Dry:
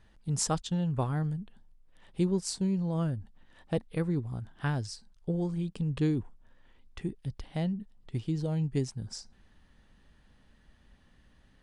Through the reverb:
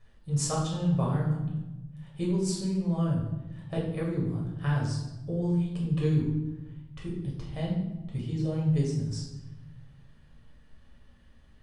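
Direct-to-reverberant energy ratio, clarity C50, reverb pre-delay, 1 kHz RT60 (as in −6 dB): −5.0 dB, 3.0 dB, 7 ms, 0.95 s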